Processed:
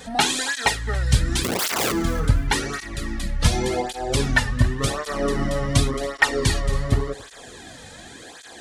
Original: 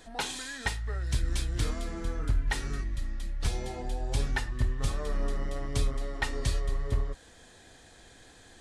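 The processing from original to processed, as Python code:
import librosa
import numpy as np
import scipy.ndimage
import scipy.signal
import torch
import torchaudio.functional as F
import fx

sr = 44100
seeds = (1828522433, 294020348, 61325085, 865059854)

p1 = fx.rider(x, sr, range_db=10, speed_s=0.5)
p2 = x + F.gain(torch.from_numpy(p1), 2.0).numpy()
p3 = fx.overflow_wrap(p2, sr, gain_db=24.0, at=(1.43, 1.91), fade=0.02)
p4 = fx.echo_feedback(p3, sr, ms=277, feedback_pct=26, wet_db=-18)
p5 = fx.flanger_cancel(p4, sr, hz=0.89, depth_ms=3.1)
y = F.gain(torch.from_numpy(p5), 9.0).numpy()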